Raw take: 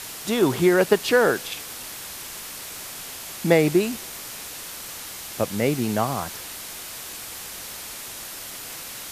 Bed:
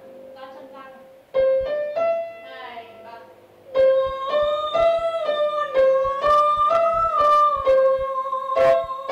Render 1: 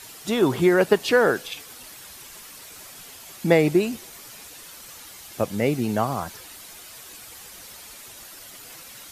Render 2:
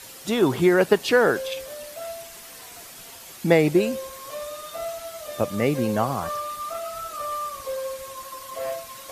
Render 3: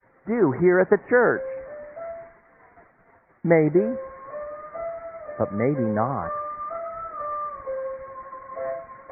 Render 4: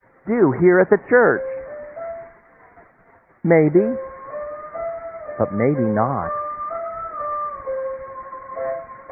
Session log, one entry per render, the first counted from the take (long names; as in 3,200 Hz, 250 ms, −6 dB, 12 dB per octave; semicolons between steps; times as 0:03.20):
broadband denoise 9 dB, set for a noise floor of −37 dBFS
mix in bed −14 dB
Butterworth low-pass 2,100 Hz 96 dB per octave; downward expander −42 dBFS
level +4.5 dB; brickwall limiter −2 dBFS, peak gain reduction 2 dB